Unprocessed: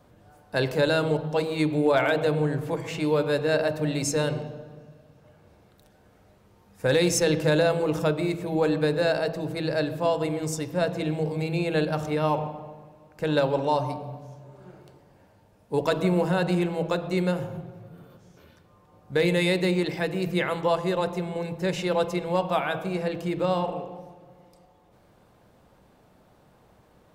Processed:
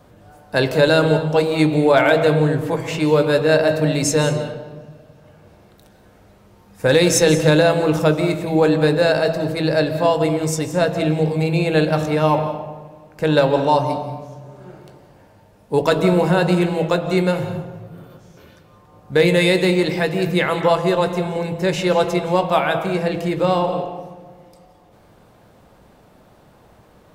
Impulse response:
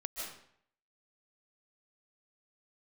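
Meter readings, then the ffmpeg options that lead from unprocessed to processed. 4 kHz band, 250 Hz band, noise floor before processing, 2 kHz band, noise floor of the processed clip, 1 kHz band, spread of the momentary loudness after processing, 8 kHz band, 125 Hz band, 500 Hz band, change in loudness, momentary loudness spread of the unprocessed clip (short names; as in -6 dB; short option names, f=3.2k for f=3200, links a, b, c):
+8.0 dB, +7.5 dB, -59 dBFS, +8.0 dB, -51 dBFS, +8.5 dB, 10 LU, +8.0 dB, +8.0 dB, +8.0 dB, +8.0 dB, 9 LU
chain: -filter_complex "[0:a]asplit=2[a][b];[1:a]atrim=start_sample=2205,adelay=19[c];[b][c]afir=irnorm=-1:irlink=0,volume=-9.5dB[d];[a][d]amix=inputs=2:normalize=0,volume=7.5dB"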